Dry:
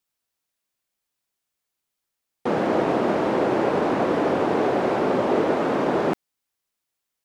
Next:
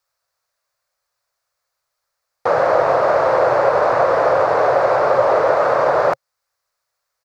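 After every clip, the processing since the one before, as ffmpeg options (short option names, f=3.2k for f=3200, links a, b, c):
-filter_complex "[0:a]firequalizer=gain_entry='entry(130,0);entry(210,-20);entry(370,-9);entry(540,9);entry(810,4);entry(1200,9);entry(3100,-7);entry(4400,4);entry(9000,-4)':delay=0.05:min_phase=1,asplit=2[a][b];[b]alimiter=limit=-15dB:level=0:latency=1:release=351,volume=-1.5dB[c];[a][c]amix=inputs=2:normalize=0"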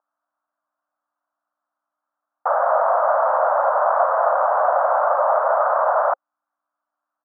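-af "aeval=exprs='val(0)+0.00501*(sin(2*PI*60*n/s)+sin(2*PI*2*60*n/s)/2+sin(2*PI*3*60*n/s)/3+sin(2*PI*4*60*n/s)/4+sin(2*PI*5*60*n/s)/5)':c=same,asuperpass=centerf=950:order=8:qfactor=1.1"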